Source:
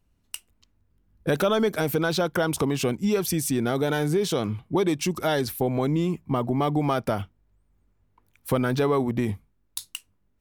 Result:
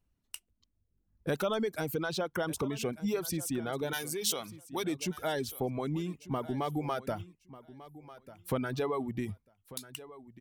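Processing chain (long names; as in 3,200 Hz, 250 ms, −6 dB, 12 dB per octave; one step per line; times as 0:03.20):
reverb reduction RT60 1.1 s
0:03.93–0:04.84: spectral tilt +4 dB per octave
on a send: repeating echo 1,194 ms, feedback 16%, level −17 dB
on the sum: level −8 dB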